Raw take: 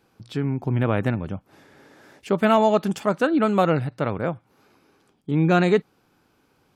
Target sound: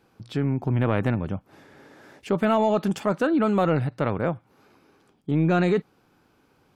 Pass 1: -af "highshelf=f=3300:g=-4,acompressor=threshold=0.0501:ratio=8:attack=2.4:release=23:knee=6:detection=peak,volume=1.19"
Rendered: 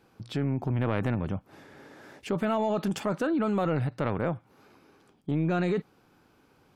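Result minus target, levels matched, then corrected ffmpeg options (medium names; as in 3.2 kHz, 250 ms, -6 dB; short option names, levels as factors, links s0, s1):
compression: peak gain reduction +6.5 dB
-af "highshelf=f=3300:g=-4,acompressor=threshold=0.119:ratio=8:attack=2.4:release=23:knee=6:detection=peak,volume=1.19"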